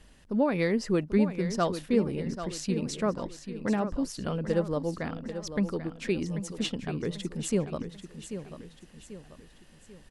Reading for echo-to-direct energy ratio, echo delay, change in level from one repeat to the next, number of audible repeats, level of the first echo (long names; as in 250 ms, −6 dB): −9.5 dB, 789 ms, −7.0 dB, 3, −10.5 dB